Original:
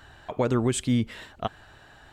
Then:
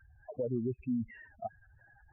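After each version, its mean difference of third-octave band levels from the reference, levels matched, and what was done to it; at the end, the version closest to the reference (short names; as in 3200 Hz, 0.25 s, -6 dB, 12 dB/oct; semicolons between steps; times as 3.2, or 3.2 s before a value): 12.0 dB: spectral contrast raised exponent 3.8; brick-wall FIR low-pass 2800 Hz; gain -9 dB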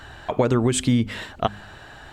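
3.0 dB: high shelf 9900 Hz -3.5 dB; de-hum 50.99 Hz, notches 5; compressor, threshold -24 dBFS, peak gain reduction 6 dB; gain +9 dB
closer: second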